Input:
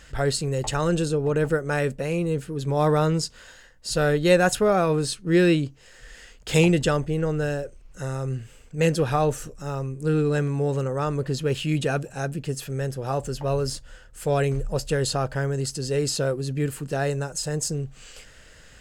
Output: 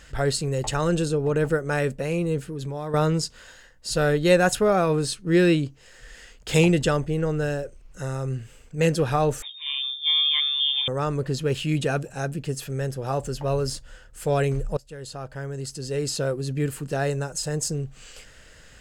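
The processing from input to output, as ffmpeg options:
-filter_complex "[0:a]asettb=1/sr,asplit=3[s0][s1][s2];[s0]atrim=end=2.424[s3];[s1]atrim=start=2.42:end=2.94,asetpts=PTS-STARTPTS,afade=t=in:d=0.004:c=qsin,afade=t=out:st=0.516:d=0.004:c=qsin,acompressor=threshold=0.0398:ratio=8:attack=3.2:release=140:knee=1:detection=peak[s4];[s2]atrim=start=2.936[s5];[s3][s4]acrossfade=d=0.004:c1=hsin:c2=qsin[s6];[s6][s5]acrossfade=d=0.004:c1=qsin:c2=hsin,asettb=1/sr,asplit=3[s7][s8][s9];[s7]atrim=end=9.424[s10];[s8]atrim=start=9.42:end=10.88,asetpts=PTS-STARTPTS,afade=t=in:d=0.004:c=qsin,afade=t=out:st=1.456:d=0.004:c=qsin,lowpass=f=3100:t=q:w=0.5098,lowpass=f=3100:t=q:w=0.6013,lowpass=f=3100:t=q:w=0.9,lowpass=f=3100:t=q:w=2.563,afreqshift=-3700[s11];[s9]atrim=start=10.876[s12];[s10][s11]acrossfade=d=0.004:c1=hsin:c2=qsin[s13];[s13][s12]acrossfade=d=0.004:c1=qsin:c2=hsin,asplit=2[s14][s15];[s14]atrim=end=14.77,asetpts=PTS-STARTPTS,afade=t=out:st=14.766:d=0.004:c=hsin:silence=0.0749894[s16];[s15]atrim=start=14.77,asetpts=PTS-STARTPTS,afade=t=in:d=1.73:silence=0.0749894[s17];[s16][s17]concat=n=2:v=0:a=1"

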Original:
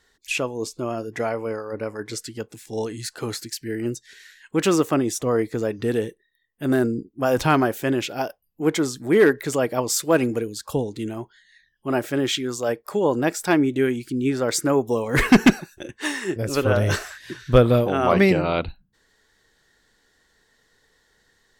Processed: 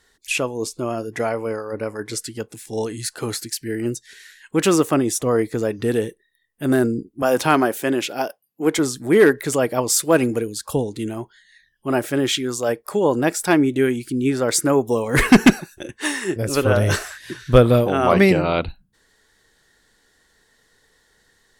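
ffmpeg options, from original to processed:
-filter_complex "[0:a]asettb=1/sr,asplit=3[s0][s1][s2];[s0]atrim=end=7.224[s3];[s1]atrim=start=7.22:end=8.79,asetpts=PTS-STARTPTS,afade=t=in:d=0.004:c=qsin,afade=t=out:st=1.566:d=0.004:c=qsin,highpass=200[s4];[s2]atrim=start=8.786[s5];[s3][s4]acrossfade=d=0.004:c1=hsin:c2=qsin[s6];[s6][s5]acrossfade=d=0.004:c1=qsin:c2=hsin,equalizer=f=10000:w=2:g=7,volume=1.33"

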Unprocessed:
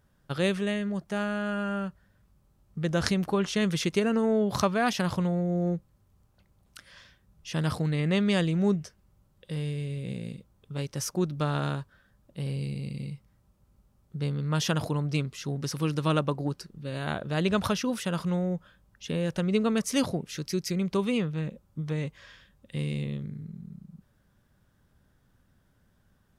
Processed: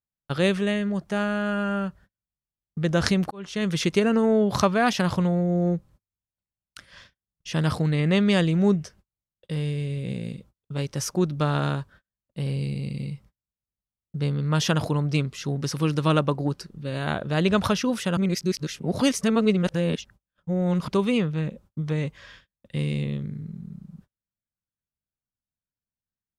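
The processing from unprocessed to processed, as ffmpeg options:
-filter_complex "[0:a]asplit=4[s0][s1][s2][s3];[s0]atrim=end=3.31,asetpts=PTS-STARTPTS,afade=t=out:st=3.306:d=0.004:c=hsin[s4];[s1]atrim=start=3.31:end=18.172,asetpts=PTS-STARTPTS,afade=t=in:d=0.52[s5];[s2]atrim=start=18.168:end=20.882,asetpts=PTS-STARTPTS,areverse[s6];[s3]atrim=start=20.878[s7];[s4][s5]concat=n=2:v=0:a=1[s8];[s8][s6]acrossfade=d=0.004:c1=hsin:c2=hsin[s9];[s9][s7]acrossfade=d=0.004:c1=hsin:c2=hsin,agate=range=0.0141:threshold=0.00224:ratio=16:detection=peak,highshelf=f=11000:g=-7.5,volume=1.68"

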